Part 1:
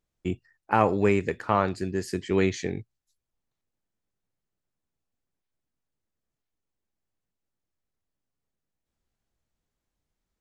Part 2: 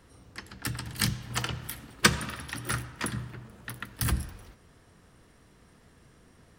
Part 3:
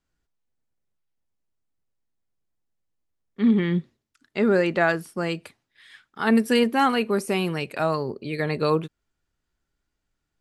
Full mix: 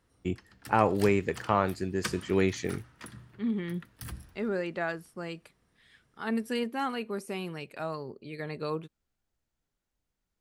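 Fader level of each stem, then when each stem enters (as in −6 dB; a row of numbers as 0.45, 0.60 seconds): −2.5, −13.5, −11.5 decibels; 0.00, 0.00, 0.00 seconds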